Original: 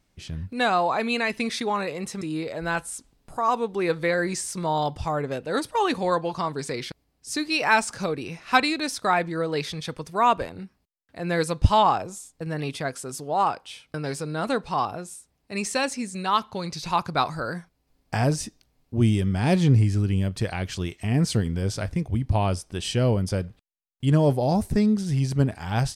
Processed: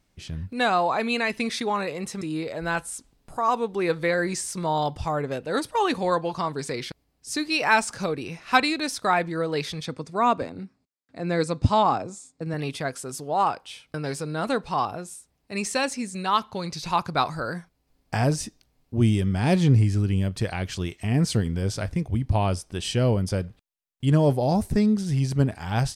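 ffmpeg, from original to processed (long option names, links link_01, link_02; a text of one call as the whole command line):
ffmpeg -i in.wav -filter_complex "[0:a]asettb=1/sr,asplit=3[link_01][link_02][link_03];[link_01]atrim=end=9.854[link_04];[link_02]atrim=start=9.85:end=12.54,asetpts=PTS-STARTPTS,afade=type=in:duration=0.004:curve=qsin,afade=type=out:start_time=2.686:duration=0.004:curve=qsin,highpass=100,equalizer=frequency=120:width_type=q:width=4:gain=4,equalizer=frequency=260:width_type=q:width=4:gain=7,equalizer=frequency=930:width_type=q:width=4:gain=-3,equalizer=frequency=1700:width_type=q:width=4:gain=-4,equalizer=frequency=3000:width_type=q:width=4:gain=-8,equalizer=frequency=5900:width_type=q:width=4:gain=-4,lowpass=frequency=8400:width=0.5412,lowpass=frequency=8400:width=1.3066[link_05];[link_03]atrim=start=12.536[link_06];[link_04][link_05]acrossfade=duration=0.004:curve1=hsin:curve2=qsin[link_07];[link_07][link_06]acrossfade=duration=0.004:curve1=qsin:curve2=hsin" out.wav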